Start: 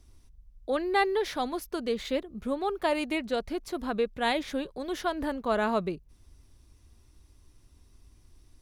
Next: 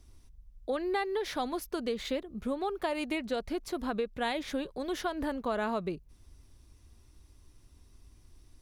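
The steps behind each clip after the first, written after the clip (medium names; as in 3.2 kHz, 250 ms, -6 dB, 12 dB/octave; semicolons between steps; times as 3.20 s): compression 6:1, threshold -28 dBFS, peak gain reduction 8.5 dB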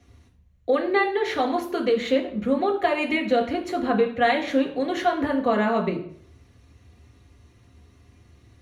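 reverberation RT60 0.60 s, pre-delay 3 ms, DRR 1 dB; trim -2.5 dB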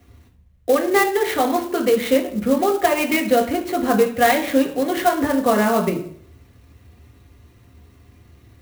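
sampling jitter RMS 0.033 ms; trim +4.5 dB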